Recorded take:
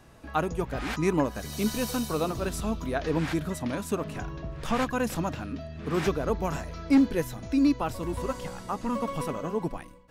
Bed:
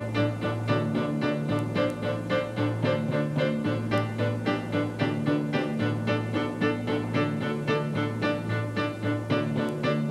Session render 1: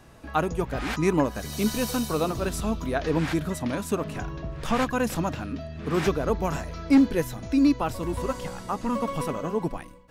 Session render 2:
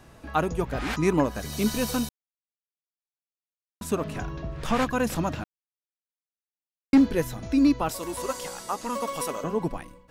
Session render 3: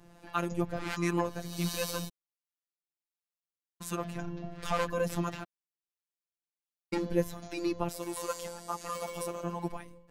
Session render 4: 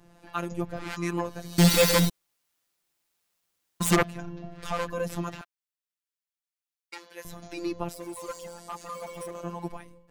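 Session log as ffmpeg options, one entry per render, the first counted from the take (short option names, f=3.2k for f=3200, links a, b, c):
-af "volume=2.5dB"
-filter_complex "[0:a]asettb=1/sr,asplit=3[a][b][c];[a]atrim=end=7.894[d];[b]atrim=start=7.89:end=9.44,asetpts=PTS-STARTPTS,afade=t=in:d=0.004:c=qsin,afade=t=out:st=1.546:d=0.004:c=qsin,bass=f=250:g=-14,treble=f=4k:g=9[e];[c]atrim=start=9.436[f];[d][e]acrossfade=d=0.004:c1=hsin:c2=qsin[g];[g][f]acrossfade=d=0.004:c1=qsin:c2=hsin,asplit=5[h][i][j][k][l];[h]atrim=end=2.09,asetpts=PTS-STARTPTS,afade=t=out:st=2.086:d=0.004:c=hsin[m];[i]atrim=start=2.09:end=3.81,asetpts=PTS-STARTPTS,volume=0[n];[j]atrim=start=3.81:end=5.44,asetpts=PTS-STARTPTS,afade=t=in:d=0.004:c=hsin,afade=t=out:st=1.626:d=0.004:c=hsin[o];[k]atrim=start=5.44:end=6.93,asetpts=PTS-STARTPTS,volume=0[p];[l]atrim=start=6.93,asetpts=PTS-STARTPTS,afade=t=in:d=0.004:c=hsin[q];[m][n][o][p][q]concat=n=5:v=0:a=1"
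-filter_complex "[0:a]acrossover=split=680[a][b];[a]aeval=exprs='val(0)*(1-0.5/2+0.5/2*cos(2*PI*1.4*n/s))':c=same[c];[b]aeval=exprs='val(0)*(1-0.5/2-0.5/2*cos(2*PI*1.4*n/s))':c=same[d];[c][d]amix=inputs=2:normalize=0,afftfilt=real='hypot(re,im)*cos(PI*b)':imag='0':win_size=1024:overlap=0.75"
-filter_complex "[0:a]asettb=1/sr,asplit=3[a][b][c];[a]atrim=end=1.584[d];[b]atrim=start=1.58:end=4.03,asetpts=PTS-STARTPTS,afade=t=in:d=0.004:c=qsin,afade=t=out:st=2.446:d=0.004:c=qsin,aeval=exprs='0.224*sin(PI/2*5.01*val(0)/0.224)':c=same[e];[c]atrim=start=4.026[f];[d][e]acrossfade=d=0.004:c1=hsin:c2=qsin[g];[g][f]acrossfade=d=0.004:c1=qsin:c2=hsin,asettb=1/sr,asplit=3[h][i][j];[h]atrim=end=5.414[k];[i]atrim=start=5.41:end=7.25,asetpts=PTS-STARTPTS,afade=t=in:d=0.004:c=qsin,afade=t=out:st=1.836:d=0.004:c=qsin,highpass=1.2k[l];[j]atrim=start=7.246[m];[k][l]acrossfade=d=0.004:c1=hsin:c2=qsin[n];[n][m]acrossfade=d=0.004:c1=qsin:c2=hsin,asettb=1/sr,asplit=3[o][p][q];[o]atrim=end=7.944[r];[p]atrim=start=7.94:end=9.35,asetpts=PTS-STARTPTS,afade=t=in:d=0.004:c=qsin,afade=t=out:st=1.406:d=0.004:c=qsin,asoftclip=type=hard:threshold=-29.5dB[s];[q]atrim=start=9.346[t];[r][s]acrossfade=d=0.004:c1=hsin:c2=qsin[u];[u][t]acrossfade=d=0.004:c1=qsin:c2=hsin"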